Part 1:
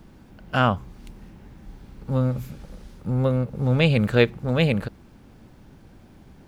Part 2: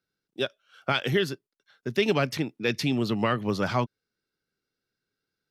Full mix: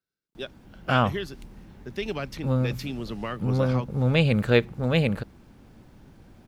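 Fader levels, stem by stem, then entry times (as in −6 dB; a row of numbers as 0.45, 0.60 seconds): −2.0, −7.5 decibels; 0.35, 0.00 seconds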